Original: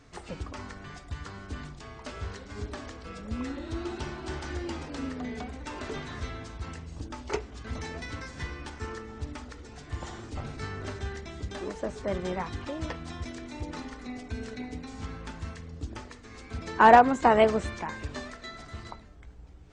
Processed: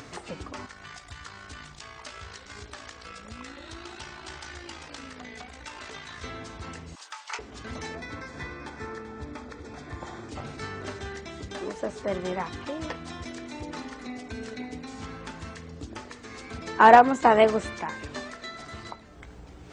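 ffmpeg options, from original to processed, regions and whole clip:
ffmpeg -i in.wav -filter_complex "[0:a]asettb=1/sr,asplit=3[link_01][link_02][link_03];[link_01]atrim=end=0.664[link_04];[link_02]atrim=start=0.66:end=6.24,asetpts=PTS-STARTPTS,afade=type=in:duration=0.004:curve=qsin,afade=type=out:start_time=5.576:duration=0.004:curve=qsin,tremolo=f=56:d=0.519,equalizer=frequency=280:width=0.41:gain=-12.5[link_05];[link_03]atrim=start=6.236[link_06];[link_04][link_05]acrossfade=duration=0.004:curve1=hsin:curve2=qsin[link_07];[link_07][link_06]acrossfade=duration=0.004:curve1=qsin:curve2=hsin,asettb=1/sr,asplit=3[link_08][link_09][link_10];[link_08]atrim=end=6.954[link_11];[link_09]atrim=start=6.95:end=7.39,asetpts=PTS-STARTPTS,afade=type=in:duration=0.004:curve=qsin,afade=type=out:start_time=0.436:duration=0.004:curve=qsin,highpass=frequency=950:width=0.5412,highpass=frequency=950:width=1.3066,asplit=2[link_12][link_13];[link_13]adelay=23,volume=-9dB[link_14];[link_12][link_14]amix=inputs=2:normalize=0,atrim=end_sample=19404[link_15];[link_10]atrim=start=7.386[link_16];[link_11][link_15]acrossfade=duration=0.004:curve1=hsin:curve2=qsin[link_17];[link_17][link_16]acrossfade=duration=0.004:curve1=qsin:curve2=hsin,asettb=1/sr,asplit=3[link_18][link_19][link_20];[link_18]atrim=end=7.954[link_21];[link_19]atrim=start=7.95:end=10.29,asetpts=PTS-STARTPTS,afade=type=in:duration=0.004:curve=qsin,afade=type=out:start_time=2.336:duration=0.004:curve=qsin,asuperstop=centerf=2900:order=12:qfactor=7.7,highshelf=frequency=3700:gain=-9.5,aecho=1:1:387:0.237,atrim=end_sample=103194[link_22];[link_20]atrim=start=10.286[link_23];[link_21][link_22]acrossfade=duration=0.004:curve1=hsin:curve2=qsin[link_24];[link_24][link_23]acrossfade=duration=0.004:curve1=qsin:curve2=hsin,highpass=frequency=180:poles=1,acompressor=mode=upward:threshold=-38dB:ratio=2.5,volume=2.5dB" out.wav

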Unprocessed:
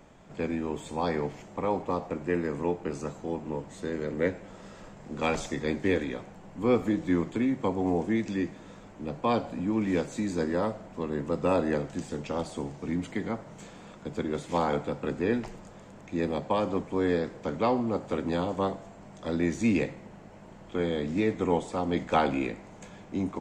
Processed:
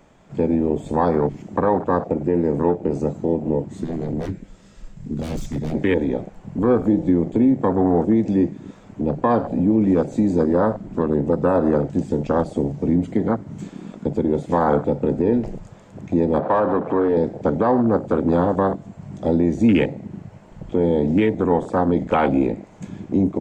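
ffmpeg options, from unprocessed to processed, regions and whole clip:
ffmpeg -i in.wav -filter_complex "[0:a]asettb=1/sr,asplit=3[link_01][link_02][link_03];[link_01]atrim=end=3.844[link_04];[link_02]atrim=start=3.84:end=5.75,asetpts=PTS-STARTPTS,afade=type=in:duration=0.004:curve=qsin,afade=type=out:start_time=1.906:duration=0.004:curve=qsin,equalizer=frequency=790:width_type=o:width=2.9:gain=-10.5,aeval=exprs='0.02*(abs(mod(val(0)/0.02+3,4)-2)-1)':channel_layout=same[link_05];[link_03]atrim=start=5.746[link_06];[link_04][link_05]acrossfade=duration=0.004:curve1=hsin:curve2=qsin[link_07];[link_07][link_06]acrossfade=duration=0.004:curve1=qsin:curve2=hsin,asettb=1/sr,asplit=3[link_08][link_09][link_10];[link_08]atrim=end=16.394[link_11];[link_09]atrim=start=16.39:end=17.17,asetpts=PTS-STARTPTS,afade=type=in:duration=0.004:curve=qsin,afade=type=out:start_time=0.776:duration=0.004:curve=qsin,bass=frequency=250:gain=0,treble=frequency=4000:gain=-8,acompressor=threshold=-40dB:ratio=1.5:attack=3.2:release=140:knee=1:detection=peak,asplit=2[link_12][link_13];[link_13]highpass=frequency=720:poles=1,volume=17dB,asoftclip=type=tanh:threshold=-21.5dB[link_14];[link_12][link_14]amix=inputs=2:normalize=0,lowpass=frequency=2200:poles=1,volume=-6dB[link_15];[link_10]atrim=start=17.166[link_16];[link_11][link_15]acrossfade=duration=0.004:curve1=hsin:curve2=qsin[link_17];[link_17][link_16]acrossfade=duration=0.004:curve1=qsin:curve2=hsin,afwtdn=0.02,acompressor=threshold=-43dB:ratio=1.5,alimiter=level_in=25dB:limit=-1dB:release=50:level=0:latency=1,volume=-7dB" out.wav

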